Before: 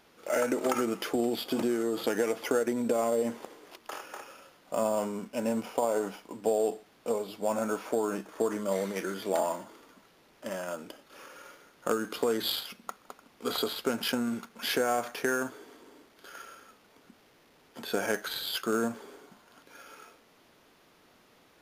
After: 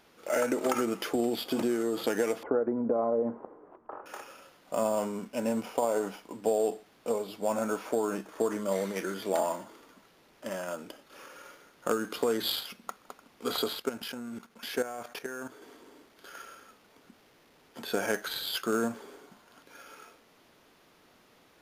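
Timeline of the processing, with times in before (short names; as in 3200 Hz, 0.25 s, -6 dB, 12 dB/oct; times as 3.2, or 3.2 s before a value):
2.43–4.06 LPF 1200 Hz 24 dB/oct
13.76–15.62 level quantiser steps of 13 dB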